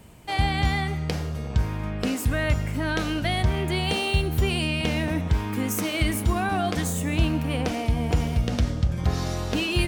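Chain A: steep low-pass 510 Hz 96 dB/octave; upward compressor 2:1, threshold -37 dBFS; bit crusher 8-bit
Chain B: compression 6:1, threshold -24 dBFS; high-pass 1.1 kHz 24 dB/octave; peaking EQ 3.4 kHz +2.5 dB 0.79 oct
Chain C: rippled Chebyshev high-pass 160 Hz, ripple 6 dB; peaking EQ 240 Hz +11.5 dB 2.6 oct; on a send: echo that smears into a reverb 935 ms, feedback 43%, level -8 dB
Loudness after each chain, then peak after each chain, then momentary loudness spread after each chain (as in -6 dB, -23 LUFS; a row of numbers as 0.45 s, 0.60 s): -27.0 LUFS, -33.5 LUFS, -23.0 LUFS; -11.0 dBFS, -13.0 dBFS, -8.5 dBFS; 4 LU, 11 LU, 6 LU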